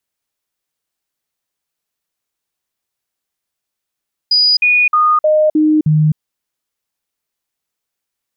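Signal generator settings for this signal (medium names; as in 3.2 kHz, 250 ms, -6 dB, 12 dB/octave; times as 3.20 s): stepped sine 4.92 kHz down, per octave 1, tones 6, 0.26 s, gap 0.05 s -8 dBFS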